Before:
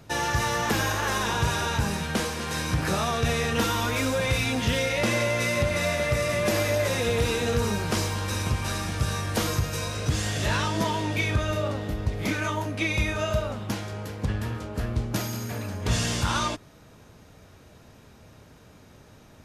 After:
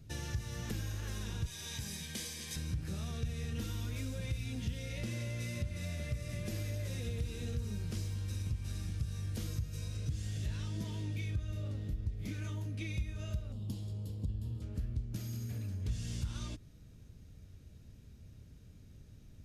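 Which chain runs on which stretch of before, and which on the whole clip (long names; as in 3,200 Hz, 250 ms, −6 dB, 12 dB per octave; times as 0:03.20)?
0:01.46–0:02.56: tilt shelving filter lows −7.5 dB, about 1,300 Hz + notch comb filter 1,400 Hz
0:13.52–0:14.62: flat-topped bell 1,800 Hz −13.5 dB 1.1 octaves + notch filter 6,000 Hz, Q 6.3
whole clip: guitar amp tone stack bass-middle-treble 10-0-1; downward compressor 2.5 to 1, threshold −47 dBFS; level +9.5 dB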